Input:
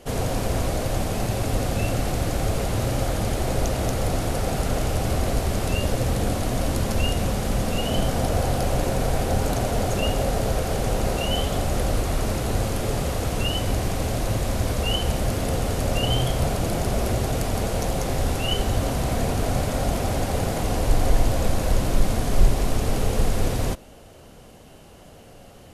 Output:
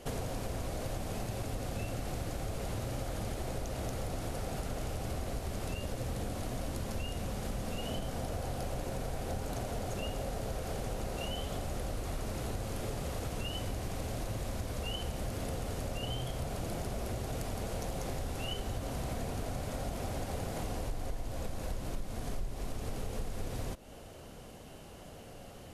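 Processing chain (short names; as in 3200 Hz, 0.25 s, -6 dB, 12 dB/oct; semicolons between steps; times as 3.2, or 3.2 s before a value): compressor 6:1, threshold -31 dBFS, peak gain reduction 19.5 dB; gain -3 dB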